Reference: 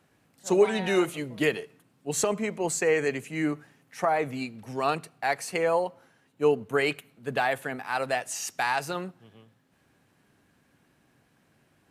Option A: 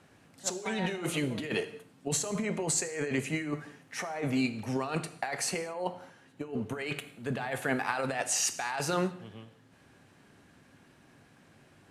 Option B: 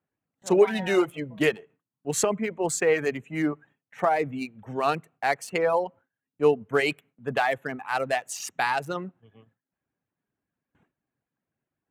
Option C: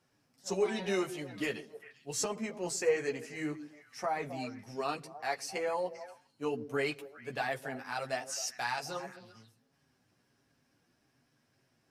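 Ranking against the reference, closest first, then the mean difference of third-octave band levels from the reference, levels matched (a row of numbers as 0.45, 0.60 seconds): C, B, A; 3.5, 4.5, 7.5 decibels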